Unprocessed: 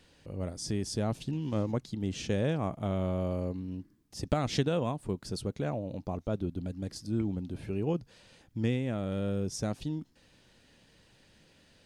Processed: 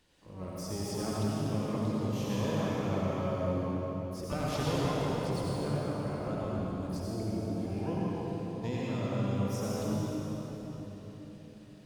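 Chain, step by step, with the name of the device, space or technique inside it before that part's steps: shimmer-style reverb (harmony voices +12 st -8 dB; reverberation RT60 4.4 s, pre-delay 67 ms, DRR -6.5 dB); trim -8.5 dB

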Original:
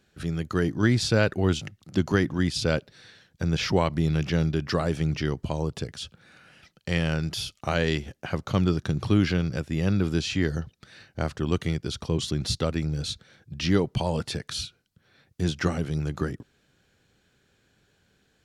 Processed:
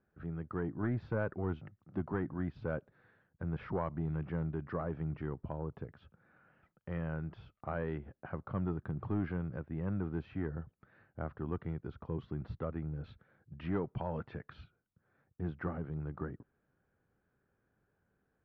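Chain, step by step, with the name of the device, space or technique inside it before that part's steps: 12.92–14.64 s: dynamic bell 2.7 kHz, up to +6 dB, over -44 dBFS, Q 0.83; overdriven synthesiser ladder filter (saturation -14 dBFS, distortion -17 dB; four-pole ladder low-pass 1.7 kHz, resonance 25%); trim -5 dB

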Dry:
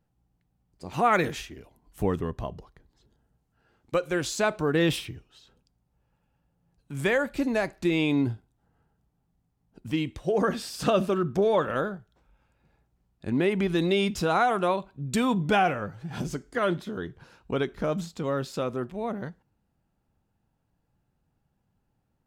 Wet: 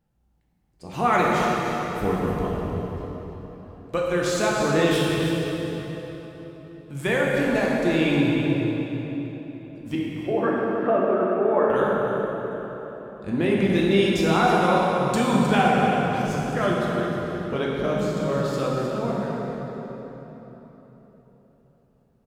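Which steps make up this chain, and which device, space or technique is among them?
9.95–11.70 s: elliptic band-pass 240–1900 Hz, stop band 50 dB; cave (delay 311 ms -10 dB; reverberation RT60 4.0 s, pre-delay 6 ms, DRR -4 dB); trim -1 dB

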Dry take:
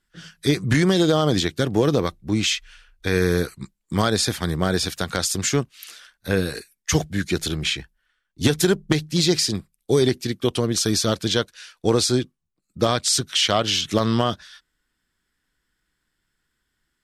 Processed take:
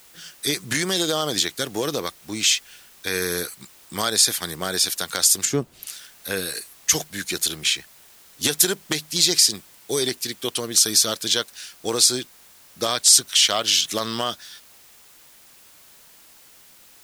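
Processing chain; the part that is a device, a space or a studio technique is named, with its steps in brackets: turntable without a phono preamp (RIAA curve recording; white noise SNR 26 dB); 5.45–5.87 s: tilt shelf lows +10 dB, about 890 Hz; trim -3 dB

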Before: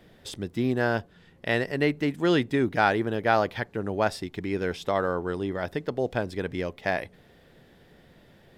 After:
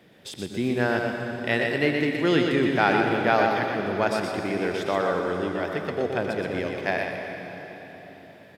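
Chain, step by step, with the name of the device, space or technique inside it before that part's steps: PA in a hall (high-pass 120 Hz 12 dB/octave; peaking EQ 2.4 kHz +3.5 dB 0.51 oct; delay 122 ms -5 dB; reverberation RT60 4.2 s, pre-delay 77 ms, DRR 4 dB)

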